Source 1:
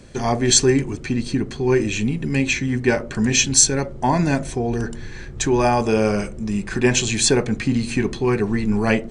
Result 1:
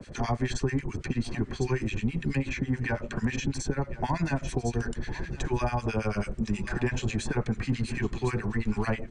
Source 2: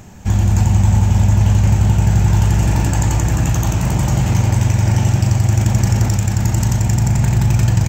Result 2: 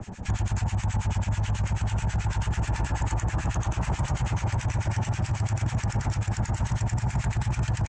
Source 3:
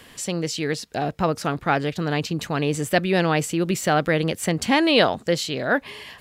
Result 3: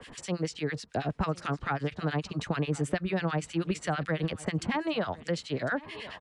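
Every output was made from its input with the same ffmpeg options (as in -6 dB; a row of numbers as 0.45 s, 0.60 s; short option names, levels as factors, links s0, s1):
-filter_complex "[0:a]acrossover=split=120|930[s0][s1][s2];[s1]acompressor=threshold=0.0282:ratio=4[s3];[s0][s3][s2]amix=inputs=3:normalize=0,acrossover=split=1300[s4][s5];[s4]aeval=exprs='val(0)*(1-1/2+1/2*cos(2*PI*9.2*n/s))':c=same[s6];[s5]aeval=exprs='val(0)*(1-1/2-1/2*cos(2*PI*9.2*n/s))':c=same[s7];[s6][s7]amix=inputs=2:normalize=0,highshelf=f=5200:g=-8,asplit=2[s8][s9];[s9]aecho=0:1:1051:0.075[s10];[s8][s10]amix=inputs=2:normalize=0,alimiter=limit=0.15:level=0:latency=1:release=12,aresample=22050,aresample=44100,acrossover=split=280|1400[s11][s12][s13];[s11]acompressor=threshold=0.0316:ratio=4[s14];[s12]acompressor=threshold=0.0178:ratio=4[s15];[s13]acompressor=threshold=0.00501:ratio=4[s16];[s14][s15][s16]amix=inputs=3:normalize=0,volume=1.78"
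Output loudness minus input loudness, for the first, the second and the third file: -11.0 LU, -13.0 LU, -9.5 LU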